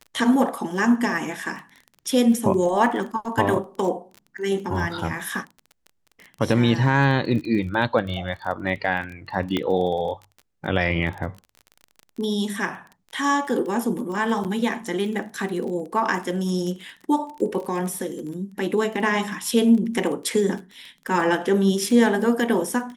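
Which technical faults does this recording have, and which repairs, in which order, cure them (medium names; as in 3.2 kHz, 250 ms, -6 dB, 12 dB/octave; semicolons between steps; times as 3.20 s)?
crackle 25 per s -31 dBFS
9.57 s: pop -11 dBFS
14.44–14.45 s: dropout 7.9 ms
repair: de-click; interpolate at 14.44 s, 7.9 ms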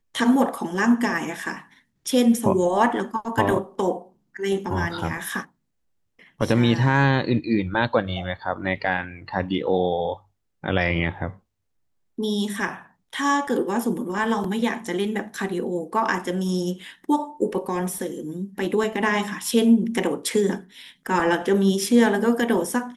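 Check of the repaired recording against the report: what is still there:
nothing left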